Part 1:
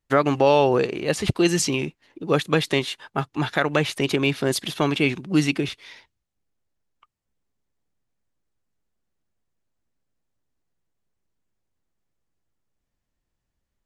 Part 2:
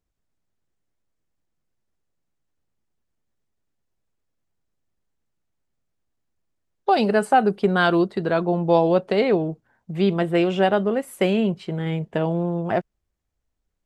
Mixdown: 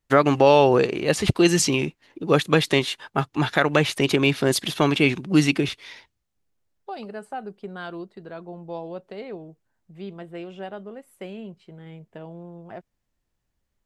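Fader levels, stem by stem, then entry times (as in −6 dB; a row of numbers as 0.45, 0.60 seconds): +2.0, −16.5 decibels; 0.00, 0.00 seconds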